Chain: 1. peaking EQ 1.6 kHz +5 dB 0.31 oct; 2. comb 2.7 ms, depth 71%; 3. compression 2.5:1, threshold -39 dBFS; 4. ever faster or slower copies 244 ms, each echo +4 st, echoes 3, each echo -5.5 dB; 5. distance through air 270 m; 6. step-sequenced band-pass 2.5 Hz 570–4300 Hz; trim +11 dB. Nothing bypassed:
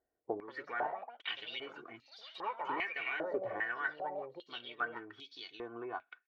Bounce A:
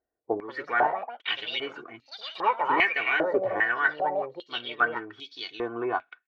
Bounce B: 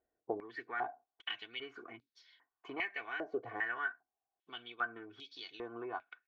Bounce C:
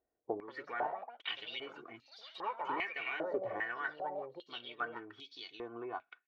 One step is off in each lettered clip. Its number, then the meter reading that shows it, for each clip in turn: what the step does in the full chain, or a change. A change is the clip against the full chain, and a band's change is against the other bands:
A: 3, mean gain reduction 10.5 dB; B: 4, 1 kHz band -2.0 dB; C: 1, 2 kHz band -2.0 dB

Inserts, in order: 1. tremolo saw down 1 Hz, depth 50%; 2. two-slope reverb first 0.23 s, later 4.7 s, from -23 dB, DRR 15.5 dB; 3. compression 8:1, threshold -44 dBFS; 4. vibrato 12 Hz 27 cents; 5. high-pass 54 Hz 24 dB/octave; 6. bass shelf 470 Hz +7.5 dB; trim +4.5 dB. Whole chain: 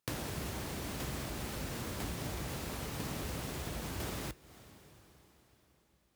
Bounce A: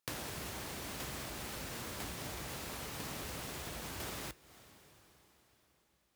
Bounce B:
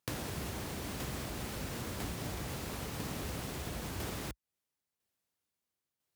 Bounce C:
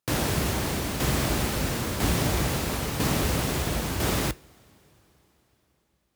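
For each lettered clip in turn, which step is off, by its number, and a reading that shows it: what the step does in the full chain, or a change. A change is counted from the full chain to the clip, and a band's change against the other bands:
6, 125 Hz band -6.0 dB; 2, momentary loudness spread change -7 LU; 3, mean gain reduction 12.0 dB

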